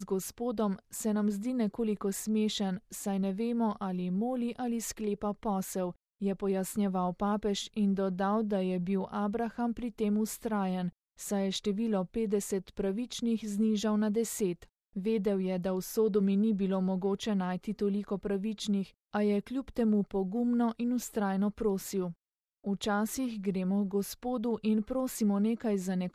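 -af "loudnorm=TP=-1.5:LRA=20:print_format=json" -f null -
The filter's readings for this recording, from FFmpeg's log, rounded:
"input_i" : "-32.1",
"input_tp" : "-16.8",
"input_lra" : "2.1",
"input_thresh" : "-42.2",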